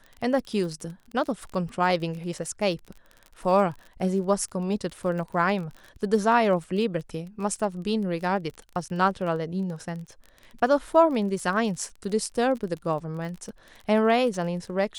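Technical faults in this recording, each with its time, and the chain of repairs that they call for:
surface crackle 31 per second −34 dBFS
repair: click removal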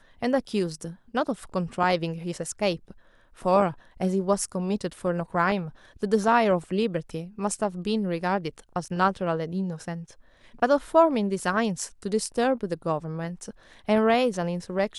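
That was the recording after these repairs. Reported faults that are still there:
none of them is left

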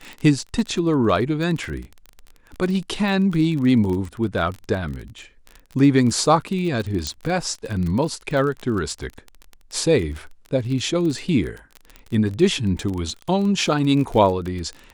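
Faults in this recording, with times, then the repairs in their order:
surface crackle 30 per second −27 dBFS
0:07.07: click −11 dBFS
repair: click removal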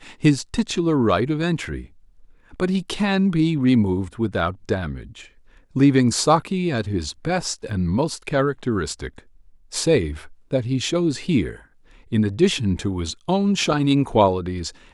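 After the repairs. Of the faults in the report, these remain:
none of them is left

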